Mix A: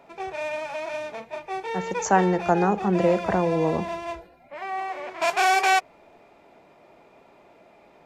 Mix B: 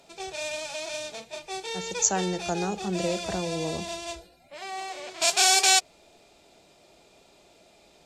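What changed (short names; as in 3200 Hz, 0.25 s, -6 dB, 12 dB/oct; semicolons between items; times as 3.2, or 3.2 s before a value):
background +4.0 dB; master: add ten-band EQ 125 Hz -5 dB, 250 Hz -7 dB, 500 Hz -5 dB, 1000 Hz -11 dB, 2000 Hz -9 dB, 4000 Hz +7 dB, 8000 Hz +11 dB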